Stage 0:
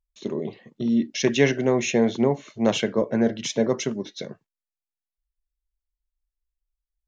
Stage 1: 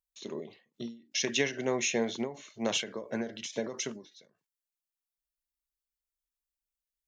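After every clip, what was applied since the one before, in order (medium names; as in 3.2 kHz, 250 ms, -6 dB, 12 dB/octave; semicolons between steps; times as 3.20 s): tilt EQ +2.5 dB/octave; endings held to a fixed fall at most 140 dB/s; trim -6 dB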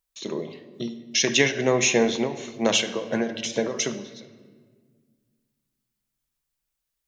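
simulated room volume 2000 m³, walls mixed, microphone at 0.65 m; trim +9 dB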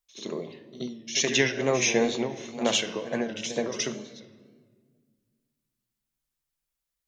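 wow and flutter 83 cents; pre-echo 74 ms -12.5 dB; trim -3.5 dB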